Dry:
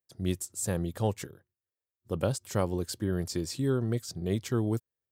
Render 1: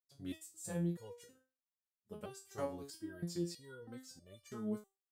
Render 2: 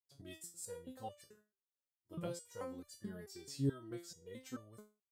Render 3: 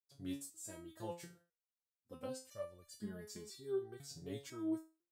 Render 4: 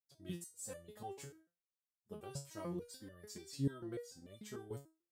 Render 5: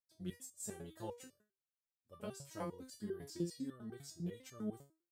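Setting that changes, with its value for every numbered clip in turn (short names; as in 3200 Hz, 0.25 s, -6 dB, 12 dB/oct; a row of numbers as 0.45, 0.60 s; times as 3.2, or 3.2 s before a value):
stepped resonator, rate: 3.1, 4.6, 2, 6.8, 10 Hz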